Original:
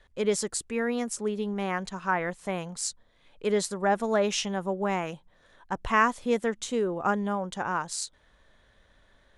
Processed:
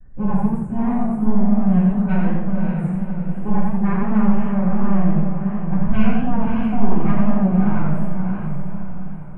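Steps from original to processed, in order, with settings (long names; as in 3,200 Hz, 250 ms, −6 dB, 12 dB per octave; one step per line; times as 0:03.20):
Chebyshev band-stop filter 1,700–9,200 Hz, order 2
noise gate with hold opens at −57 dBFS
graphic EQ with 10 bands 125 Hz +9 dB, 250 Hz +3 dB, 500 Hz −10 dB, 1,000 Hz −9 dB, 2,000 Hz −10 dB, 4,000 Hz −11 dB, 8,000 Hz −6 dB
sine wavefolder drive 9 dB, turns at −20 dBFS
high-frequency loss of the air 440 metres
on a send: feedback delay with all-pass diffusion 568 ms, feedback 45%, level −6 dB
on the sum: rectangular room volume 560 cubic metres, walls furnished, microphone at 8.2 metres
feedback echo with a swinging delay time 87 ms, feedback 33%, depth 131 cents, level −3 dB
level −10.5 dB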